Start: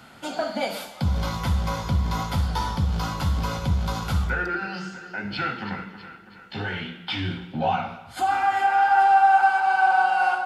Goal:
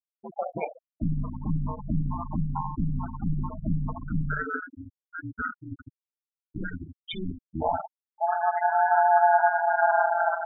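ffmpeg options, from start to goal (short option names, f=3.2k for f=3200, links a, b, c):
-filter_complex "[0:a]aeval=exprs='val(0)*sin(2*PI*85*n/s)':c=same,asettb=1/sr,asplit=3[a][b][c];[a]atrim=end=5.874[d];[b]atrim=start=5.87:end=7.18,asetpts=PTS-STARTPTS,afade=t=in:d=0.004:c=qsin,afade=t=out:st=1.306:d=0.004:c=qsin,lowshelf=f=280:g=4.5[e];[c]atrim=start=7.176[f];[d][e]acrossfade=d=0.004:c1=hsin:c2=qsin[g];[g][f]acrossfade=d=0.004:c1=qsin:c2=hsin,afftfilt=real='re*gte(hypot(re,im),0.1)':imag='im*gte(hypot(re,im),0.1)':win_size=1024:overlap=0.75"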